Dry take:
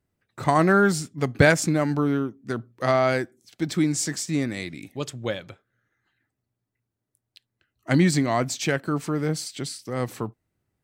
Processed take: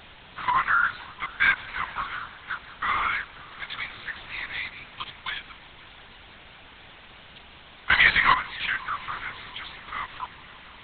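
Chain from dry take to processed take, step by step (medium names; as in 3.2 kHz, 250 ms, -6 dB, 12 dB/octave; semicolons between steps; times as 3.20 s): elliptic high-pass 960 Hz, stop band 40 dB; 7.91–8.33 s: waveshaping leveller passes 5; in parallel at -2 dB: compression, threshold -32 dBFS, peak gain reduction 15 dB; on the sum: bit crusher 6-bit; added noise white -41 dBFS; on a send: multi-head delay 174 ms, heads first and third, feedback 75%, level -24 dB; on the sum: LPC vocoder at 8 kHz whisper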